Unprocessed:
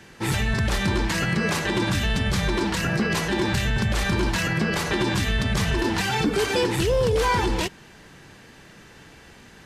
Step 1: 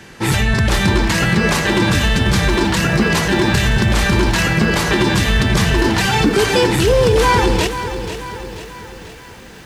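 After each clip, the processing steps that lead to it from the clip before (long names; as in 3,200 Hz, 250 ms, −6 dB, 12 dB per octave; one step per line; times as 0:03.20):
feedback echo at a low word length 487 ms, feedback 55%, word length 8 bits, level −10.5 dB
level +8 dB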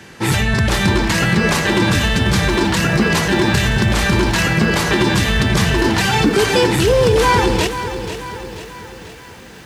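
high-pass filter 54 Hz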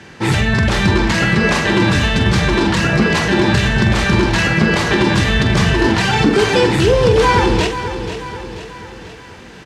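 high-frequency loss of the air 60 metres
double-tracking delay 45 ms −9 dB
level +1 dB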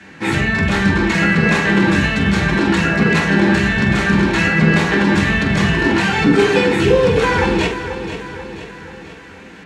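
convolution reverb RT60 0.50 s, pre-delay 3 ms, DRR −2.5 dB
level −6.5 dB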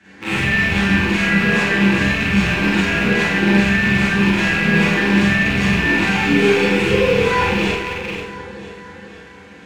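loose part that buzzes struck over −26 dBFS, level −6 dBFS
four-comb reverb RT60 0.55 s, combs from 31 ms, DRR −8 dB
level −11.5 dB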